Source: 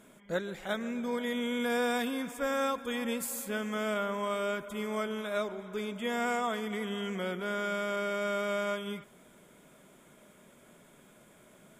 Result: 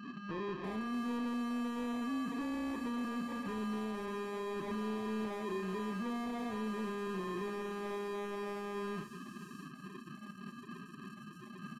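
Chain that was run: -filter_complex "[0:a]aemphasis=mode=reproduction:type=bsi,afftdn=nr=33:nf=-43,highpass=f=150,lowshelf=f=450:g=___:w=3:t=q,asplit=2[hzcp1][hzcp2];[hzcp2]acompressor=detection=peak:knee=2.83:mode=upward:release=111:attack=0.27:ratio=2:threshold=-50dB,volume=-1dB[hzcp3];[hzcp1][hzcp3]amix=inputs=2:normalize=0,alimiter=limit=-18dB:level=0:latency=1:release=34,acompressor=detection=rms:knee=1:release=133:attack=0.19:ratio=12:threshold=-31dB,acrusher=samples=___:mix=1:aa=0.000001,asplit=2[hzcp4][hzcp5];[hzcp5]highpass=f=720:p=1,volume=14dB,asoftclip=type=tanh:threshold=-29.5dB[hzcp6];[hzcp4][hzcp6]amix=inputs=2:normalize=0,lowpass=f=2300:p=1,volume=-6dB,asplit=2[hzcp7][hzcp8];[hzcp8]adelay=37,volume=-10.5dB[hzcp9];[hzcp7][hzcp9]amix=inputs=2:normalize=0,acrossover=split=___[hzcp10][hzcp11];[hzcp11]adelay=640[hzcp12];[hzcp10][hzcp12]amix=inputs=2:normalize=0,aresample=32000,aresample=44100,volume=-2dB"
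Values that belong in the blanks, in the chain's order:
7.5, 31, 5000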